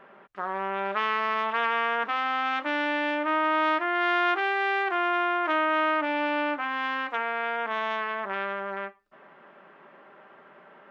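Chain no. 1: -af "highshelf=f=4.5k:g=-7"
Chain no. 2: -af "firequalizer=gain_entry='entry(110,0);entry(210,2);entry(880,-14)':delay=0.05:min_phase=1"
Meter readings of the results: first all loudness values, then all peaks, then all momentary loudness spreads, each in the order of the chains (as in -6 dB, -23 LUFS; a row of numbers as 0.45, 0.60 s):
-27.0, -36.0 LUFS; -13.0, -23.0 dBFS; 7, 7 LU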